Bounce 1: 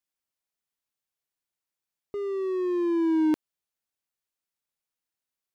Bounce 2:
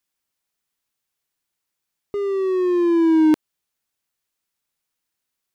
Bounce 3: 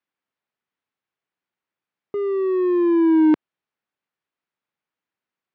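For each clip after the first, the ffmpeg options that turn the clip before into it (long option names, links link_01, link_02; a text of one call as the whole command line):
ffmpeg -i in.wav -af "equalizer=frequency=610:width=1.5:gain=-2.5,volume=8.5dB" out.wav
ffmpeg -i in.wav -af "highpass=130,lowpass=2300" out.wav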